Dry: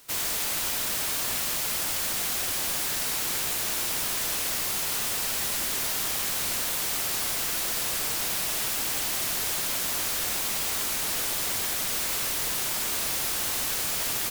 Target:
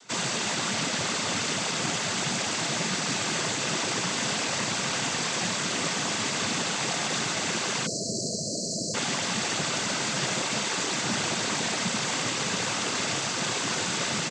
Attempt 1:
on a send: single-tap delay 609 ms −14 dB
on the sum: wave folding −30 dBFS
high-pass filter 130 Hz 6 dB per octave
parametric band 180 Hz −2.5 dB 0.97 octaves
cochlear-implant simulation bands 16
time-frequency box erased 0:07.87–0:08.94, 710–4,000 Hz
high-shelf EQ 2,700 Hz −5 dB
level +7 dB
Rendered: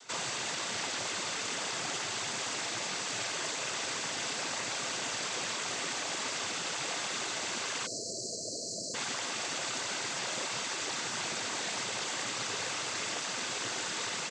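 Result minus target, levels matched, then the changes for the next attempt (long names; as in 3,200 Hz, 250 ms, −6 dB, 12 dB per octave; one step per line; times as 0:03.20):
wave folding: distortion +28 dB; 250 Hz band −6.5 dB
change: wave folding −20 dBFS
change: parametric band 180 Hz +9.5 dB 0.97 octaves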